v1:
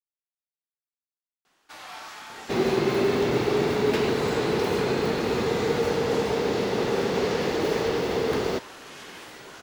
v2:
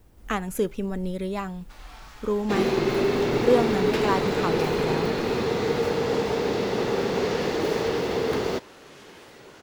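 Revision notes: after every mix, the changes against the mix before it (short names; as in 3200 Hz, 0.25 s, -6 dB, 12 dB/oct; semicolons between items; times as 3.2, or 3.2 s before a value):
speech: unmuted; first sound -7.5 dB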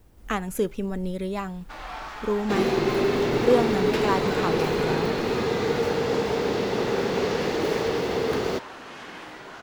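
first sound: remove pre-emphasis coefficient 0.8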